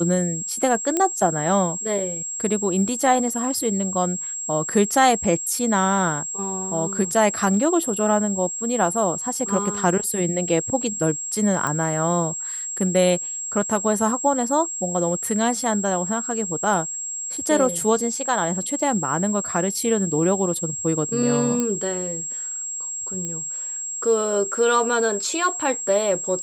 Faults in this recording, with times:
tone 7600 Hz -27 dBFS
0.97 pop -8 dBFS
11.67 pop -12 dBFS
21.6 pop -10 dBFS
23.25 pop -17 dBFS

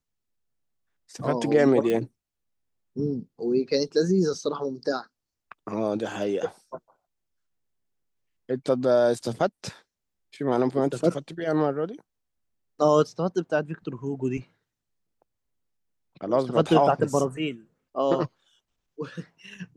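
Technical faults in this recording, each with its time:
1.9 pop -15 dBFS

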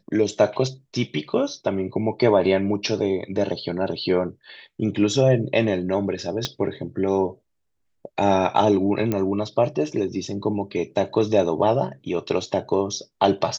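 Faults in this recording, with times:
6.45 pop -9 dBFS
9.12 pop -11 dBFS

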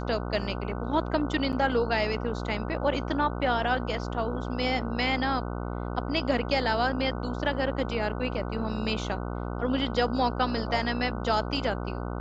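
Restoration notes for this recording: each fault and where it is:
buzz 60 Hz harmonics 25 -33 dBFS
1.52–1.53 gap 8.5 ms

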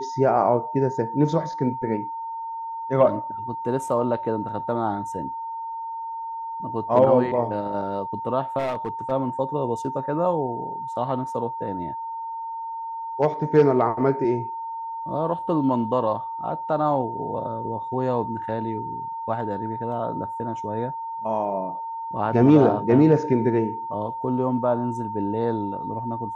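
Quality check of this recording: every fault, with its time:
tone 910 Hz -29 dBFS
8.58–9.12 clipped -22 dBFS

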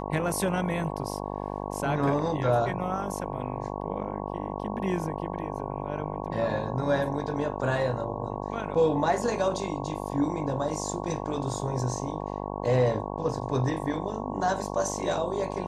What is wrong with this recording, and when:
buzz 50 Hz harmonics 22 -34 dBFS

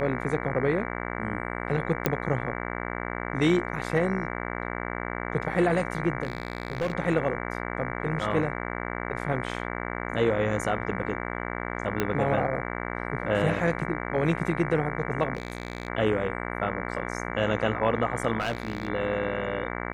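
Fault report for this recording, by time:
buzz 60 Hz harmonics 38 -33 dBFS
2.06 pop -7 dBFS
6.23–6.93 clipped -23 dBFS
12 pop -11 dBFS
15.35–15.88 clipped -25.5 dBFS
18.4–18.89 clipped -23.5 dBFS

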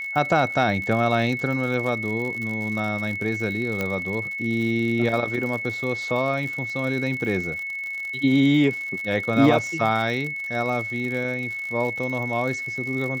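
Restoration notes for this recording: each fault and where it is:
crackle 81/s -30 dBFS
tone 2200 Hz -28 dBFS
3.81 pop -12 dBFS

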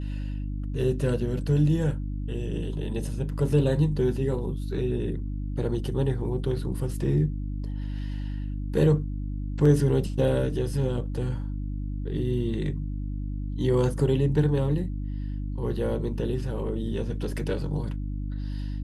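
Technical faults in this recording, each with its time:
hum 50 Hz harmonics 6 -31 dBFS

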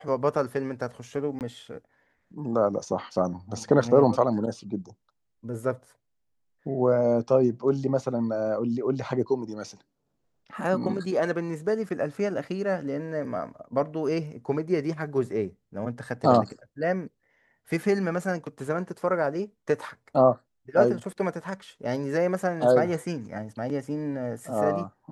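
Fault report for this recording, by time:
1.39–1.41 gap 18 ms

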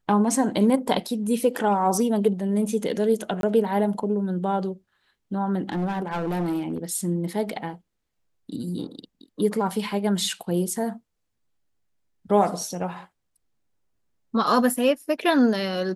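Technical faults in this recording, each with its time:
3.41–3.43 gap 22 ms
5.63–6.78 clipped -22.5 dBFS

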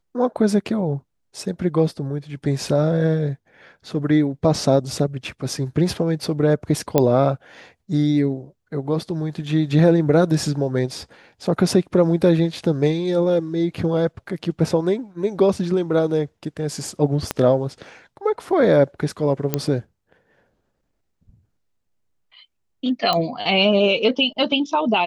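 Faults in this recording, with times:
6.98 pop -3 dBFS
17.31 pop -6 dBFS
19.54 pop -5 dBFS
23.13 pop -8 dBFS

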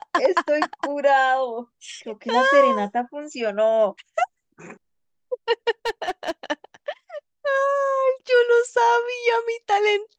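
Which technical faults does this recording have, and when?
5.86–6.31 clipped -20 dBFS

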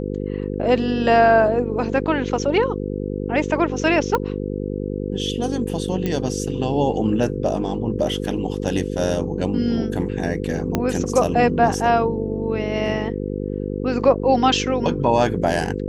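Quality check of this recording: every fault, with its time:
buzz 50 Hz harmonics 10 -26 dBFS
4.15 pop -7 dBFS
6.06 pop -11 dBFS
10.75 pop -6 dBFS

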